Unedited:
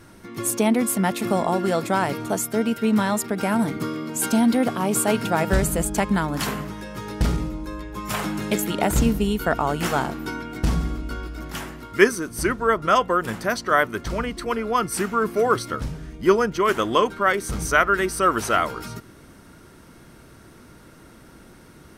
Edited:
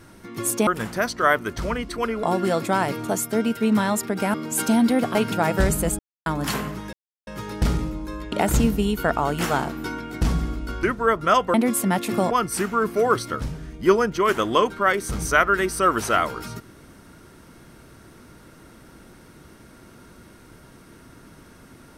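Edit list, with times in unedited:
0.67–1.44 s: swap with 13.15–14.71 s
3.55–3.98 s: delete
4.79–5.08 s: delete
5.92–6.19 s: mute
6.86 s: insert silence 0.34 s
7.91–8.74 s: delete
11.25–12.44 s: delete

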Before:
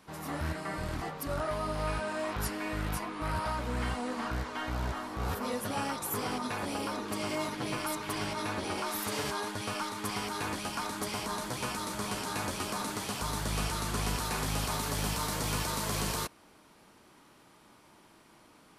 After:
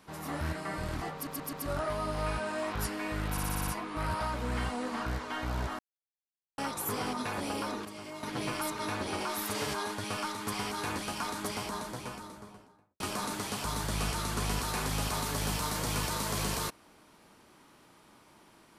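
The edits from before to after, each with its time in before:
1.14 s: stutter 0.13 s, 4 plays
2.92 s: stutter 0.06 s, 7 plays
5.04–5.83 s: mute
7.10–7.48 s: gain -10 dB
8.04–8.36 s: delete
10.95–12.57 s: studio fade out

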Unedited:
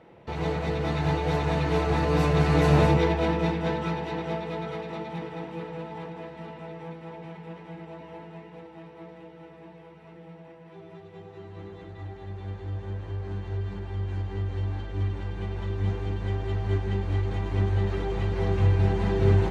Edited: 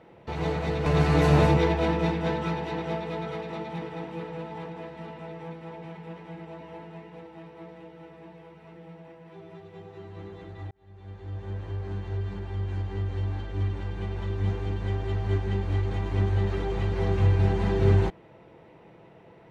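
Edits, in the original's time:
0.86–2.26 s: delete
12.11–12.98 s: fade in linear

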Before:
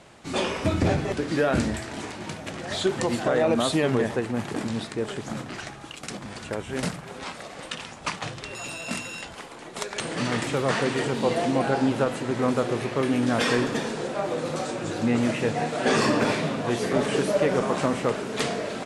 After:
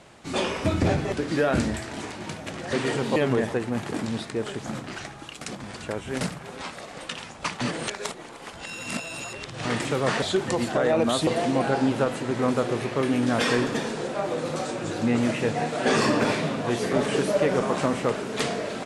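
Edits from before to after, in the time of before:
2.73–3.78 s: swap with 10.84–11.27 s
8.23–10.27 s: reverse

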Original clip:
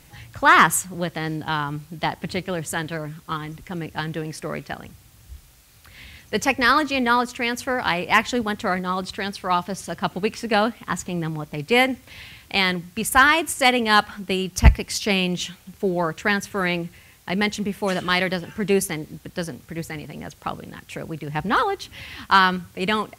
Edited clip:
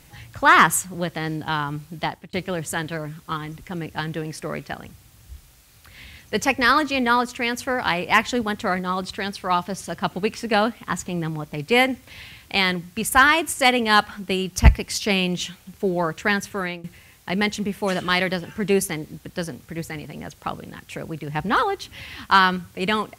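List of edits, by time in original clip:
2.00–2.33 s: fade out
16.49–16.84 s: fade out, to -18.5 dB

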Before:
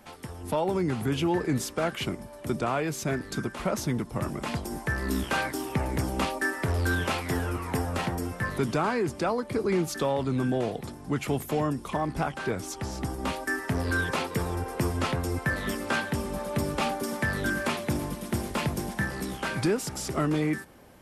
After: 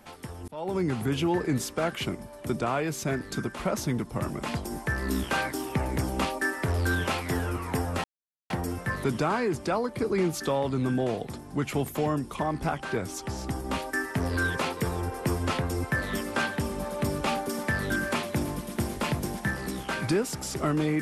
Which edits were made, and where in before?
0.48–0.80 s: fade in
8.04 s: insert silence 0.46 s

